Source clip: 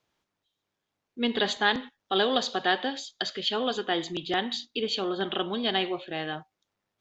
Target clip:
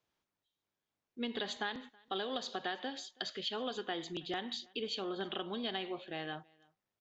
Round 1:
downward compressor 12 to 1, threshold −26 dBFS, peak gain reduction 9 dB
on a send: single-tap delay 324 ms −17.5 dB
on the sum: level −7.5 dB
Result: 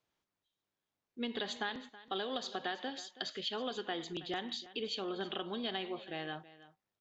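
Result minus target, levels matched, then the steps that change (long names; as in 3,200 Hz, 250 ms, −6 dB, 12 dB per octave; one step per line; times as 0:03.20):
echo-to-direct +9.5 dB
change: single-tap delay 324 ms −27 dB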